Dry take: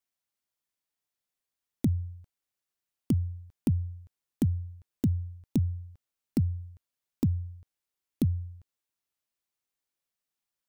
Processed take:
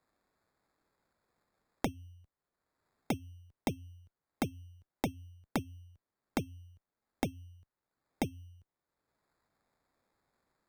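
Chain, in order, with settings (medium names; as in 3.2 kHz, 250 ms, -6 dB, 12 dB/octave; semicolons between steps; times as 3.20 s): sample-and-hold 15×; Chebyshev shaper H 3 -8 dB, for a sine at -15.5 dBFS; three bands compressed up and down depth 70%; trim +1 dB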